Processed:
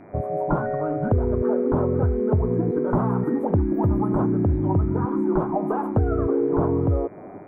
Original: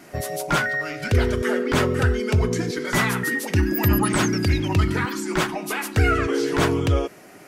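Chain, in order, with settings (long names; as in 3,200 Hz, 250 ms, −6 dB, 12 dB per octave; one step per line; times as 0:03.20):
automatic gain control
inverse Chebyshev low-pass filter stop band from 2,000 Hz, stop band 40 dB
downward compressor, threshold −20 dBFS, peak gain reduction 12.5 dB
hum with harmonics 100 Hz, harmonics 24, −56 dBFS −3 dB per octave
level +2 dB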